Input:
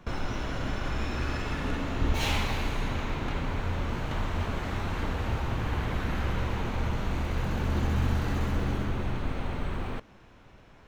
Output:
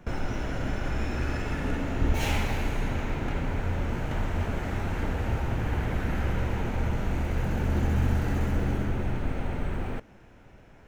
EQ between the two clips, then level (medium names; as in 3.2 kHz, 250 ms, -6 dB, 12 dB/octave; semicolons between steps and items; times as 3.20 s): peaking EQ 1.1 kHz -8 dB 0.31 oct; peaking EQ 3.9 kHz -8 dB 0.94 oct; +2.0 dB